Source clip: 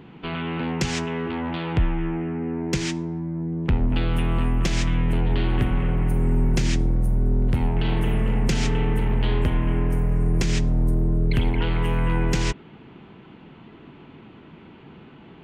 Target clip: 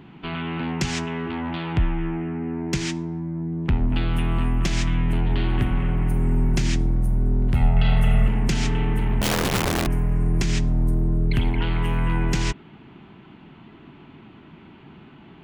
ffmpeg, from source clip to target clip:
-filter_complex "[0:a]equalizer=f=490:t=o:w=0.34:g=-8.5,asettb=1/sr,asplit=3[s0][s1][s2];[s0]atrim=end=7.554[s3];[s1]atrim=start=7.55:end=8.28,asetpts=PTS-STARTPTS,afade=t=in:d=0.004:c=qsin,afade=t=out:st=0.726:d=0.004:c=qsin,aecho=1:1:1.5:0.93,atrim=end_sample=32193[s4];[s2]atrim=start=8.276[s5];[s3][s4]acrossfade=d=0.004:c1=hsin:c2=qsin[s6];[s6][s5]acrossfade=d=0.004:c1=qsin:c2=hsin,asettb=1/sr,asplit=3[s7][s8][s9];[s7]atrim=end=9.214[s10];[s8]atrim=start=9.21:end=9.87,asetpts=PTS-STARTPTS,afade=t=in:d=0.004:c=qsin,afade=t=out:st=0.656:d=0.004:c=qsin,aeval=exprs='(mod(7.5*val(0)+1,2)-1)/7.5':c=same[s11];[s9]atrim=start=9.866[s12];[s10][s11]acrossfade=d=0.004:c1=hsin:c2=qsin[s13];[s13][s12]acrossfade=d=0.004:c1=qsin:c2=hsin"

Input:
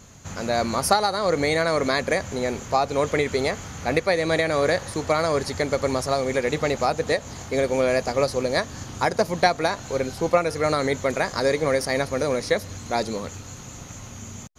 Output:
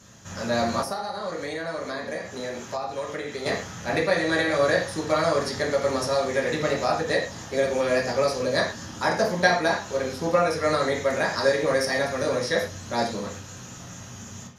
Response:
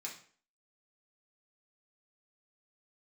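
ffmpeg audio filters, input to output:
-filter_complex "[1:a]atrim=start_sample=2205,atrim=end_sample=4410,asetrate=33075,aresample=44100[s0];[0:a][s0]afir=irnorm=-1:irlink=0,asettb=1/sr,asplit=3[s1][s2][s3];[s1]atrim=end=0.824[s4];[s2]atrim=start=0.82:end=3.46,asetpts=PTS-STARTPTS,afade=t=in:d=0.004:c=qsin,afade=t=out:st=2.636:d=0.004:c=qsin,acrossover=split=200|900[s5][s6][s7];[s5]acompressor=threshold=0.00355:ratio=4[s8];[s6]acompressor=threshold=0.0251:ratio=4[s9];[s7]acompressor=threshold=0.0141:ratio=4[s10];[s8][s9][s10]amix=inputs=3:normalize=0[s11];[s3]atrim=start=3.456[s12];[s4][s11]acrossfade=d=0.004:c1=hsin:c2=qsin[s13];[s13][s12]acrossfade=d=0.004:c1=qsin:c2=hsin"

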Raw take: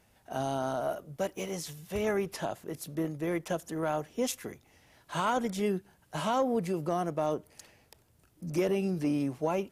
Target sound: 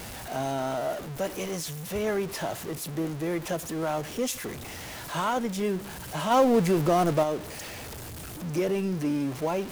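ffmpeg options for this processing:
-filter_complex "[0:a]aeval=exprs='val(0)+0.5*0.02*sgn(val(0))':c=same,asplit=3[s0][s1][s2];[s0]afade=t=out:st=6.3:d=0.02[s3];[s1]acontrast=63,afade=t=in:st=6.3:d=0.02,afade=t=out:st=7.22:d=0.02[s4];[s2]afade=t=in:st=7.22:d=0.02[s5];[s3][s4][s5]amix=inputs=3:normalize=0"

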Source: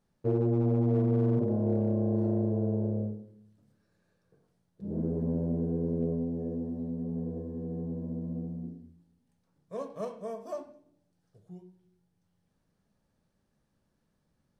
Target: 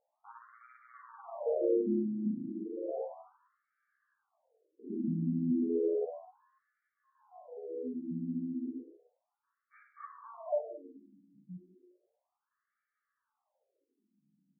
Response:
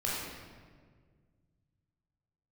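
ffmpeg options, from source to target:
-filter_complex "[0:a]asettb=1/sr,asplit=3[s0][s1][s2];[s0]atrim=end=2.264[s3];[s1]atrim=start=2.26:end=2.98,asetpts=PTS-STARTPTS,afade=t=in:d=0.004:c=qsin,afade=t=out:st=0.716:d=0.004:c=qsin,aeval=exprs='0.0299*(abs(mod(val(0)/0.0299+3,4)-2)-1)':c=same[s4];[s2]atrim=start=2.976[s5];[s3][s4]acrossfade=d=0.004:c1=hsin:c2=qsin[s6];[s6][s5]acrossfade=d=0.004:c1=qsin:c2=hsin,asplit=2[s7][s8];[s8]adelay=15,volume=0.531[s9];[s7][s9]amix=inputs=2:normalize=0,asplit=2[s10][s11];[1:a]atrim=start_sample=2205,highshelf=f=2000:g=-9[s12];[s11][s12]afir=irnorm=-1:irlink=0,volume=0.355[s13];[s10][s13]amix=inputs=2:normalize=0,afftfilt=real='re*between(b*sr/1024,220*pow(1700/220,0.5+0.5*sin(2*PI*0.33*pts/sr))/1.41,220*pow(1700/220,0.5+0.5*sin(2*PI*0.33*pts/sr))*1.41)':imag='im*between(b*sr/1024,220*pow(1700/220,0.5+0.5*sin(2*PI*0.33*pts/sr))/1.41,220*pow(1700/220,0.5+0.5*sin(2*PI*0.33*pts/sr))*1.41)':win_size=1024:overlap=0.75"

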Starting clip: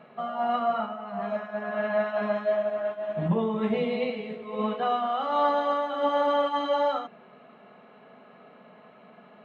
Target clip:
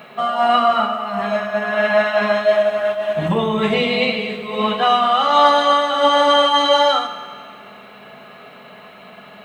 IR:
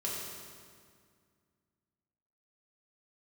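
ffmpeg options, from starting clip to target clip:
-filter_complex "[0:a]crystalizer=i=8:c=0,asplit=2[s0][s1];[s1]asubboost=boost=9.5:cutoff=100[s2];[1:a]atrim=start_sample=2205[s3];[s2][s3]afir=irnorm=-1:irlink=0,volume=0.299[s4];[s0][s4]amix=inputs=2:normalize=0,volume=2"

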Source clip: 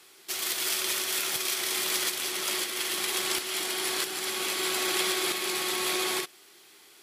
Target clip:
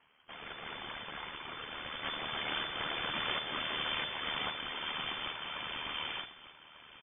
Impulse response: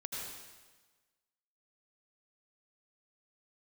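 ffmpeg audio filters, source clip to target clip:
-filter_complex "[0:a]asettb=1/sr,asplit=3[s0][s1][s2];[s0]atrim=end=2.044[s3];[s1]atrim=start=2.04:end=4.5,asetpts=PTS-STARTPTS,afade=t=in:d=0.004:c=qsin,afade=t=out:st=2.456:d=0.004:c=qsin,acontrast=52[s4];[s2]atrim=start=4.496[s5];[s3][s4]acrossfade=d=0.004:c1=hsin:c2=qsin[s6];[s6][s5]acrossfade=d=0.004:c1=qsin:c2=hsin,afftfilt=real='hypot(re,im)*cos(2*PI*random(0))':imag='hypot(re,im)*sin(2*PI*random(1))':win_size=512:overlap=0.75,aeval=exprs='0.168*(cos(1*acos(clip(val(0)/0.168,-1,1)))-cos(1*PI/2))+0.00531*(cos(2*acos(clip(val(0)/0.168,-1,1)))-cos(2*PI/2))+0.00376*(cos(4*acos(clip(val(0)/0.168,-1,1)))-cos(4*PI/2))+0.0211*(cos(6*acos(clip(val(0)/0.168,-1,1)))-cos(6*PI/2))+0.00211*(cos(8*acos(clip(val(0)/0.168,-1,1)))-cos(8*PI/2))':c=same,tremolo=f=76:d=0.571,aecho=1:1:1195:0.188,lowpass=f=3000:t=q:w=0.5098,lowpass=f=3000:t=q:w=0.6013,lowpass=f=3000:t=q:w=0.9,lowpass=f=3000:t=q:w=2.563,afreqshift=-3500"

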